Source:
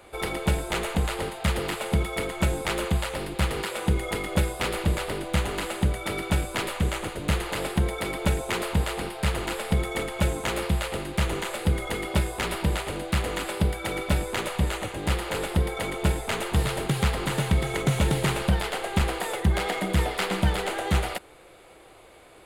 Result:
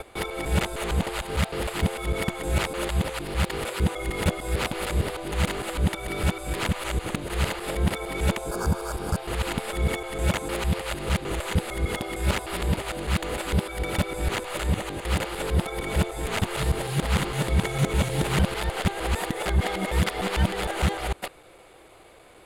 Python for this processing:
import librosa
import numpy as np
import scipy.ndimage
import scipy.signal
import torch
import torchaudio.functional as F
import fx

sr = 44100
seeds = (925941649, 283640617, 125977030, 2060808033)

y = fx.local_reverse(x, sr, ms=152.0)
y = fx.spec_repair(y, sr, seeds[0], start_s=8.47, length_s=0.71, low_hz=1700.0, high_hz=4400.0, source='both')